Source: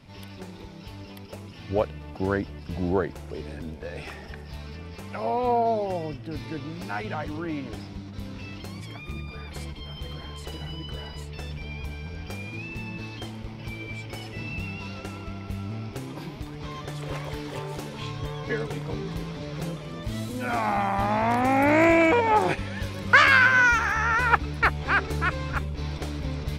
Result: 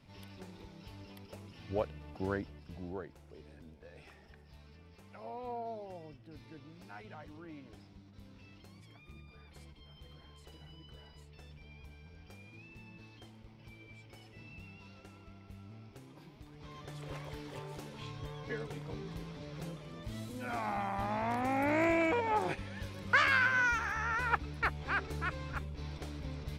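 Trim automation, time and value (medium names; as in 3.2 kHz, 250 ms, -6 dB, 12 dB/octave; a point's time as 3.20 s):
2.32 s -9.5 dB
2.95 s -18 dB
16.33 s -18 dB
16.96 s -11 dB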